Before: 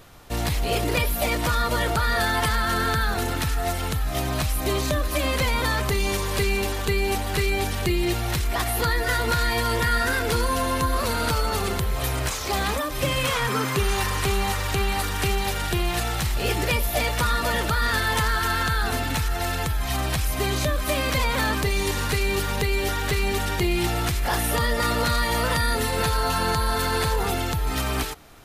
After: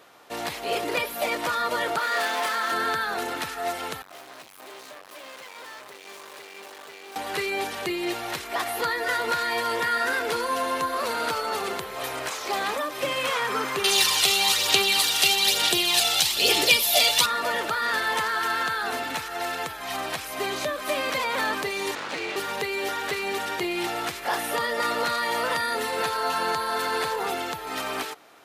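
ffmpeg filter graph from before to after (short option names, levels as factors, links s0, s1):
-filter_complex "[0:a]asettb=1/sr,asplit=3[s0][s1][s2];[s0]atrim=end=1.984[s3];[s1]atrim=start=1.98:end=2.72,asetpts=PTS-STARTPTS,afade=t=in:d=0.004:c=qsin,afade=t=out:st=0.736:d=0.004:c=qsin,highpass=f=250:w=0.5412,highpass=f=250:w=1.3066,aeval=exprs='0.1*(abs(mod(val(0)/0.1+3,4)-2)-1)':c=same,asplit=2[s4][s5];[s5]adelay=27,volume=0.562[s6];[s4][s6]amix=inputs=2:normalize=0,atrim=end_sample=32634[s7];[s2]atrim=start=2.716[s8];[s3][s7]acrossfade=d=0.004:c1=hsin:c2=qsin[s9];[s9][s8]acrossfade=d=0.004:c1=qsin:c2=hsin,asettb=1/sr,asplit=3[s10][s11][s12];[s10]atrim=end=4.024[s13];[s11]atrim=start=4.02:end=7.16,asetpts=PTS-STARTPTS,afade=t=in:d=0.004:c=qsin,afade=t=out:st=3.136:d=0.004:c=qsin,aeval=exprs='(tanh(70.8*val(0)+0.75)-tanh(0.75))/70.8':c=same,lowshelf=f=260:g=-7.5[s14];[s12]atrim=start=7.156[s15];[s13][s14]acrossfade=d=0.004:c1=hsin:c2=qsin[s16];[s16][s15]acrossfade=d=0.004:c1=qsin:c2=hsin,asettb=1/sr,asplit=3[s17][s18][s19];[s17]atrim=end=13.844[s20];[s18]atrim=start=13.84:end=17.26,asetpts=PTS-STARTPTS,afade=t=in:d=0.004:c=qsin,afade=t=out:st=3.416:d=0.004:c=qsin,highshelf=f=2400:t=q:w=1.5:g=12.5,aphaser=in_gain=1:out_gain=1:delay=1.5:decay=0.4:speed=1.1:type=sinusoidal[s21];[s19]atrim=start=17.256[s22];[s20][s21]acrossfade=d=0.004:c1=hsin:c2=qsin[s23];[s23][s22]acrossfade=d=0.004:c1=qsin:c2=hsin,asettb=1/sr,asplit=3[s24][s25][s26];[s24]atrim=end=21.954[s27];[s25]atrim=start=21.95:end=22.36,asetpts=PTS-STARTPTS,afade=t=in:d=0.004:c=qsin,afade=t=out:st=0.406:d=0.004:c=qsin,aeval=exprs='abs(val(0))':c=same,lowpass=10000,adynamicsmooth=sensitivity=5:basefreq=4300[s28];[s26]atrim=start=22.356[s29];[s27][s28]acrossfade=d=0.004:c1=hsin:c2=qsin[s30];[s30][s29]acrossfade=d=0.004:c1=qsin:c2=hsin,highpass=380,highshelf=f=4800:g=-7.5"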